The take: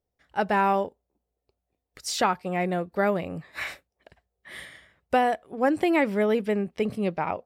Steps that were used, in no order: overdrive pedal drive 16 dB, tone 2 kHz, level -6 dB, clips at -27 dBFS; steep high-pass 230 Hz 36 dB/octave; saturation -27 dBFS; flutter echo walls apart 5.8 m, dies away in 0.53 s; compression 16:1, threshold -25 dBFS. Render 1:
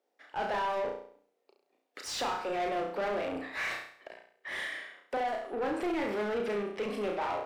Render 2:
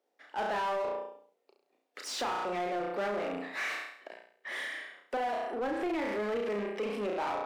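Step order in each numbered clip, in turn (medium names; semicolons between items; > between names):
steep high-pass > overdrive pedal > compression > flutter echo > saturation; flutter echo > overdrive pedal > steep high-pass > compression > saturation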